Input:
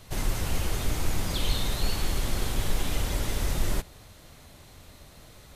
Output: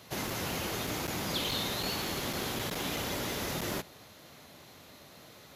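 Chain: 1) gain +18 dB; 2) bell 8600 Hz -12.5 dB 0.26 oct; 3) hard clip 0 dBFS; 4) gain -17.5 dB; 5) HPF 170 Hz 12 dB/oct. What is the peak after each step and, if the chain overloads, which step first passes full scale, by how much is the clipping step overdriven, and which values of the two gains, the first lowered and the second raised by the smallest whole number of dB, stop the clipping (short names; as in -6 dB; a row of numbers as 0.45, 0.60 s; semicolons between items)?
+5.5, +5.5, 0.0, -17.5, -20.5 dBFS; step 1, 5.5 dB; step 1 +12 dB, step 4 -11.5 dB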